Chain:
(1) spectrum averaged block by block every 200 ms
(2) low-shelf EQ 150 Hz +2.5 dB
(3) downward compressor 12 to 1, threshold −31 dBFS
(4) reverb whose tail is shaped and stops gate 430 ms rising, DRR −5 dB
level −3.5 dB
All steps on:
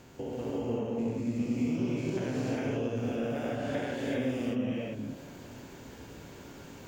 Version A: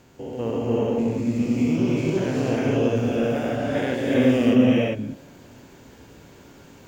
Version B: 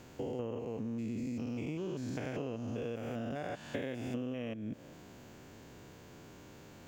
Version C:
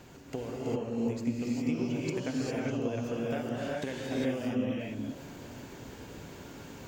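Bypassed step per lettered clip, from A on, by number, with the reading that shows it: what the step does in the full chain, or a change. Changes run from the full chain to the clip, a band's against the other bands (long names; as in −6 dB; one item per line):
3, average gain reduction 6.0 dB
4, change in crest factor +2.0 dB
1, 8 kHz band +3.5 dB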